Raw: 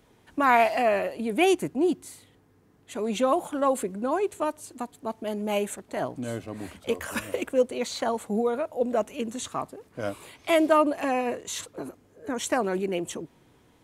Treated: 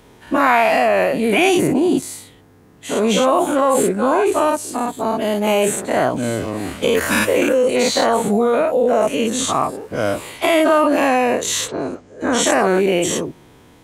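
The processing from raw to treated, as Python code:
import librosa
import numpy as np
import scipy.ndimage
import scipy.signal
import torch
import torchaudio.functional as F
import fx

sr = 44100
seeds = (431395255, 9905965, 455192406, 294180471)

p1 = fx.spec_dilate(x, sr, span_ms=120)
p2 = fx.lowpass(p1, sr, hz=fx.line((11.67, 5300.0), (12.45, 11000.0)), slope=24, at=(11.67, 12.45), fade=0.02)
p3 = fx.over_compress(p2, sr, threshold_db=-23.0, ratio=-1.0)
y = p2 + (p3 * 10.0 ** (1.5 / 20.0))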